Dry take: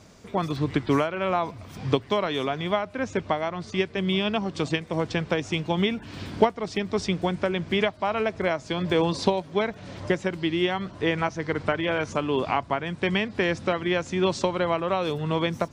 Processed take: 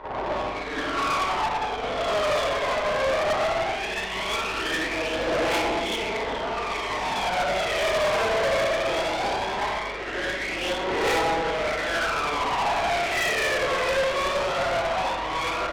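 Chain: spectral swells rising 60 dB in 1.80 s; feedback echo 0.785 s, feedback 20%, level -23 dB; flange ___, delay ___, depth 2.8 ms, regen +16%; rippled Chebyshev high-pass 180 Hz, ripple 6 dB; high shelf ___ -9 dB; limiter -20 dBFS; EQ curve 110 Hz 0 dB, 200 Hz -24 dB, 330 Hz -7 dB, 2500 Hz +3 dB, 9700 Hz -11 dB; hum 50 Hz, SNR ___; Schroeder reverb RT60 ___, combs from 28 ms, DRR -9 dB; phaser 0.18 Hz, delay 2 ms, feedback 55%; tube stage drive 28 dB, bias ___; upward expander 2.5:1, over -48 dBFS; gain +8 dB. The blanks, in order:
0.91 Hz, 2 ms, 3700 Hz, 21 dB, 2 s, 0.65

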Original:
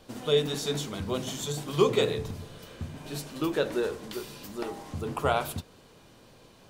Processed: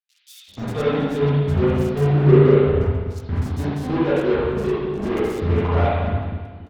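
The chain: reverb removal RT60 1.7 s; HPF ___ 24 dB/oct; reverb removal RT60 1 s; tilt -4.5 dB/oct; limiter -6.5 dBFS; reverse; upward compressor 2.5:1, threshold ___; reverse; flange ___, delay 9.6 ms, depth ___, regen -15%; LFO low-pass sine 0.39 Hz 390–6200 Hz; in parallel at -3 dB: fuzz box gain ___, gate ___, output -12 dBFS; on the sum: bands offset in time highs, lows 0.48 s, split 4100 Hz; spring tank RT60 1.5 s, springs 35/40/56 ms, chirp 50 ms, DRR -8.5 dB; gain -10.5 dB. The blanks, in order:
56 Hz, -26 dBFS, 0.36 Hz, 4.6 ms, 39 dB, -34 dBFS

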